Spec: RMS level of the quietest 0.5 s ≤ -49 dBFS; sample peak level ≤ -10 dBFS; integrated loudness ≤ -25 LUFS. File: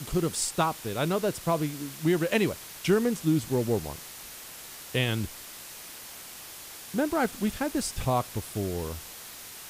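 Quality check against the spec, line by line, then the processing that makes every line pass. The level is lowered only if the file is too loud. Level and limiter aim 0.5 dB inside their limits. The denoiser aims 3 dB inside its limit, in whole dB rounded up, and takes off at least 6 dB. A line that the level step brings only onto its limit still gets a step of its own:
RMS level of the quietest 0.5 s -44 dBFS: fail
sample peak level -9.0 dBFS: fail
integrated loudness -28.5 LUFS: pass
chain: noise reduction 8 dB, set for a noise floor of -44 dBFS; peak limiter -10.5 dBFS

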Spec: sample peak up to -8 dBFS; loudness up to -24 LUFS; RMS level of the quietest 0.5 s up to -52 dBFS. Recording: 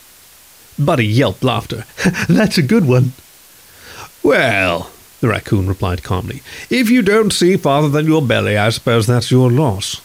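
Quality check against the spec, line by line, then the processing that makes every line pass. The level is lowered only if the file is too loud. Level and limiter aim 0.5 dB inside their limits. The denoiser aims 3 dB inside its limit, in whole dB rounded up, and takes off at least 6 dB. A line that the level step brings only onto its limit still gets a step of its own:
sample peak -3.0 dBFS: fail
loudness -14.5 LUFS: fail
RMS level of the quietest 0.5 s -44 dBFS: fail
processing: trim -10 dB

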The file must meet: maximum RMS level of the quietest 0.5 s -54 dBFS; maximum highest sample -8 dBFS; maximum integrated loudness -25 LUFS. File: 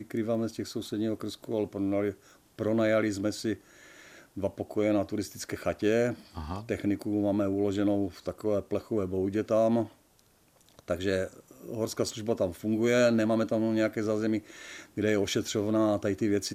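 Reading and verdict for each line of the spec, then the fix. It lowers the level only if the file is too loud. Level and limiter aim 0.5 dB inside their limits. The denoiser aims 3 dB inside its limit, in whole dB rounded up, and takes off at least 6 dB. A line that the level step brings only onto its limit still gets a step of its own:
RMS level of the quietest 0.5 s -64 dBFS: pass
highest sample -13.0 dBFS: pass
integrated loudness -29.5 LUFS: pass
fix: none needed

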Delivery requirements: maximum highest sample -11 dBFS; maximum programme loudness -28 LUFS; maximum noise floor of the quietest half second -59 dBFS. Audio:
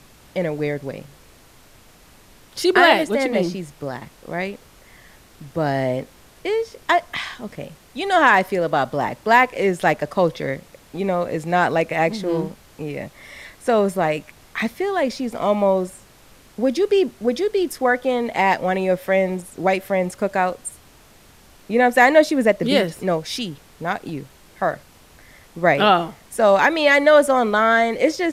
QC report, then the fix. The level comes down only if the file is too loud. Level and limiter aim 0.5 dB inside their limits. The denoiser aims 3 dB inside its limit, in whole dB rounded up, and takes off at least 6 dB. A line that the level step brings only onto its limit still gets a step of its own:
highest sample -2.0 dBFS: fail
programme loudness -19.5 LUFS: fail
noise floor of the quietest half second -49 dBFS: fail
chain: noise reduction 6 dB, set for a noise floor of -49 dBFS; trim -9 dB; peak limiter -11.5 dBFS

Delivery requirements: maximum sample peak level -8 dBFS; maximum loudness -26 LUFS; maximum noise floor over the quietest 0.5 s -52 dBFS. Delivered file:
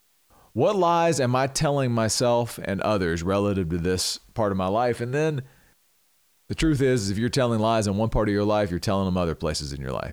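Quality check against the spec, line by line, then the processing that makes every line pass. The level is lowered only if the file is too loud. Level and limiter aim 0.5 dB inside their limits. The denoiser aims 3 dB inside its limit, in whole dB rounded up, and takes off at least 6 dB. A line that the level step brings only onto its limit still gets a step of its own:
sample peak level -10.5 dBFS: pass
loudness -24.0 LUFS: fail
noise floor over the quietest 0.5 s -64 dBFS: pass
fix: trim -2.5 dB

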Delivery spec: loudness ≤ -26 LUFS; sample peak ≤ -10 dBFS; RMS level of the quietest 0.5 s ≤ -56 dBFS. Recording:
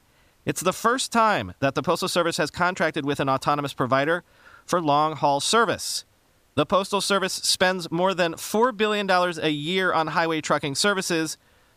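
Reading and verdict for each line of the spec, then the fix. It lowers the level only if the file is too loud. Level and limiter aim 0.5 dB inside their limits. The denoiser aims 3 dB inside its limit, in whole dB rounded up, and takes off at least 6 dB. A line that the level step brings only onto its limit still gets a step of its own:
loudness -23.0 LUFS: fail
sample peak -7.5 dBFS: fail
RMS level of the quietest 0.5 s -62 dBFS: pass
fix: trim -3.5 dB

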